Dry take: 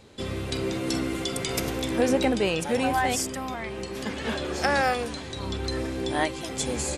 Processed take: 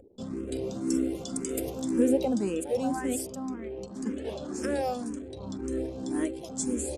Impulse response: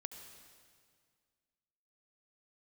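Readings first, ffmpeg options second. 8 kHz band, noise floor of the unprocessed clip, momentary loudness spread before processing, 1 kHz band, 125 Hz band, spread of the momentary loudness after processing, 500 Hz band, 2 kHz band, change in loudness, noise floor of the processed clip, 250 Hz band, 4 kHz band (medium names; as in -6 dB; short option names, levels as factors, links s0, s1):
-4.0 dB, -37 dBFS, 10 LU, -10.5 dB, -8.0 dB, 11 LU, -3.5 dB, -16.0 dB, -4.0 dB, -42 dBFS, +0.5 dB, -15.0 dB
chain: -filter_complex "[0:a]equalizer=f=125:t=o:w=1:g=-5,equalizer=f=250:t=o:w=1:g=10,equalizer=f=500:t=o:w=1:g=3,equalizer=f=1000:t=o:w=1:g=-4,equalizer=f=2000:t=o:w=1:g=-9,equalizer=f=4000:t=o:w=1:g=-7,equalizer=f=8000:t=o:w=1:g=7,acompressor=mode=upward:threshold=0.0158:ratio=2.5,anlmdn=1.58,asplit=2[s0][s1];[s1]afreqshift=1.9[s2];[s0][s2]amix=inputs=2:normalize=1,volume=0.596"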